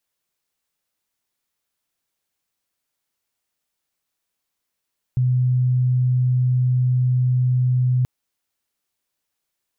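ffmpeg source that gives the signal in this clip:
-f lavfi -i "sine=f=126:d=2.88:r=44100,volume=3.06dB"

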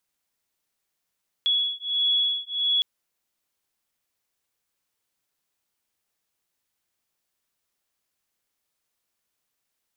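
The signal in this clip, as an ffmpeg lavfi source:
-f lavfi -i "aevalsrc='0.0596*(sin(2*PI*3370*t)+sin(2*PI*3371.5*t))':d=1.36:s=44100"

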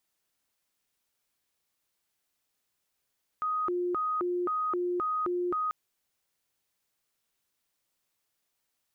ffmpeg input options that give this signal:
-f lavfi -i "aevalsrc='0.0447*sin(2*PI*(802.5*t+447.5/1.9*(0.5-abs(mod(1.9*t,1)-0.5))))':d=2.29:s=44100"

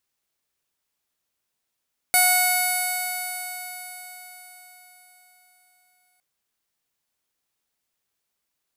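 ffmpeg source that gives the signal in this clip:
-f lavfi -i "aevalsrc='0.0891*pow(10,-3*t/4.76)*sin(2*PI*727.73*t)+0.0473*pow(10,-3*t/4.76)*sin(2*PI*1459.8*t)+0.0944*pow(10,-3*t/4.76)*sin(2*PI*2200.54*t)+0.0119*pow(10,-3*t/4.76)*sin(2*PI*2954.16*t)+0.02*pow(10,-3*t/4.76)*sin(2*PI*3724.77*t)+0.0447*pow(10,-3*t/4.76)*sin(2*PI*4516.3*t)+0.0133*pow(10,-3*t/4.76)*sin(2*PI*5332.53*t)+0.0211*pow(10,-3*t/4.76)*sin(2*PI*6177.02*t)+0.02*pow(10,-3*t/4.76)*sin(2*PI*7053.1*t)+0.0447*pow(10,-3*t/4.76)*sin(2*PI*7963.89*t)+0.0126*pow(10,-3*t/4.76)*sin(2*PI*8912.26*t)+0.1*pow(10,-3*t/4.76)*sin(2*PI*9900.88*t)+0.0112*pow(10,-3*t/4.76)*sin(2*PI*10932.16*t)+0.0891*pow(10,-3*t/4.76)*sin(2*PI*12008.31*t)':d=4.06:s=44100"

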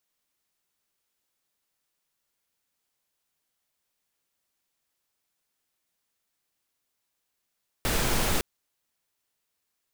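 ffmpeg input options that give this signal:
-f lavfi -i "anoisesrc=c=pink:a=0.272:d=0.56:r=44100:seed=1"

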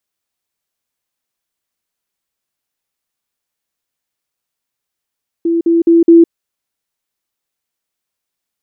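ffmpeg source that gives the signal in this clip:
-f lavfi -i "aevalsrc='pow(10,(-10.5+3*floor(t/0.21))/20)*sin(2*PI*335*t)*clip(min(mod(t,0.21),0.16-mod(t,0.21))/0.005,0,1)':d=0.84:s=44100"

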